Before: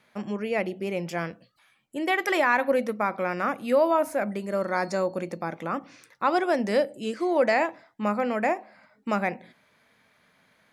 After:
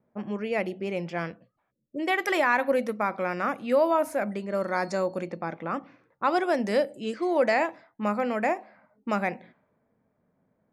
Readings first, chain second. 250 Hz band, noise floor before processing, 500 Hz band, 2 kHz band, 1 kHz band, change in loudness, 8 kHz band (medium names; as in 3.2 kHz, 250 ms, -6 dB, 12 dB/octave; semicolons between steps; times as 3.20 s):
-1.0 dB, -65 dBFS, -1.0 dB, -1.0 dB, -1.0 dB, -1.0 dB, -2.0 dB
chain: spectral selection erased 1.71–1.99 s, 610–5100 Hz; level-controlled noise filter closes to 500 Hz, open at -23.5 dBFS; trim -1 dB